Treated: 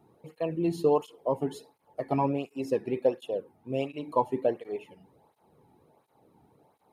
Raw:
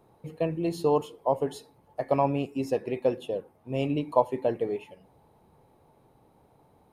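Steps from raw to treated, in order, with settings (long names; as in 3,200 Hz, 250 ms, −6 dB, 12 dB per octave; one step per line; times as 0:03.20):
low-shelf EQ 260 Hz +5 dB
through-zero flanger with one copy inverted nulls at 1.4 Hz, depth 2 ms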